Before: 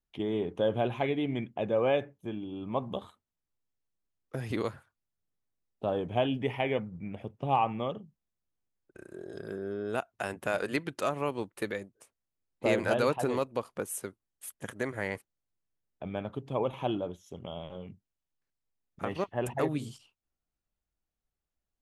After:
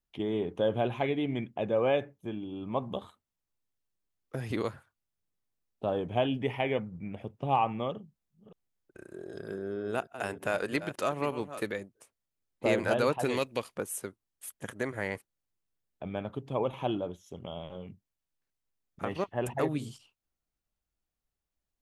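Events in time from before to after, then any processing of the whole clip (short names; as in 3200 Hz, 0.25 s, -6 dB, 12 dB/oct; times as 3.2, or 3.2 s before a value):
7.91–11.8 reverse delay 0.309 s, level -12 dB
13.24–13.75 resonant high shelf 1600 Hz +7.5 dB, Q 1.5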